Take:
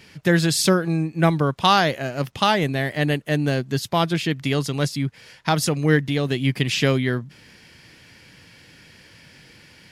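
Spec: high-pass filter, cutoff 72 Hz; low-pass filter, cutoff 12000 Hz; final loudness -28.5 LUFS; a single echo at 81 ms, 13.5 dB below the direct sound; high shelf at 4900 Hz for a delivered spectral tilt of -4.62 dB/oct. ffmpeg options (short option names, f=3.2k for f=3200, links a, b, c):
-af "highpass=72,lowpass=12k,highshelf=f=4.9k:g=4,aecho=1:1:81:0.211,volume=-7.5dB"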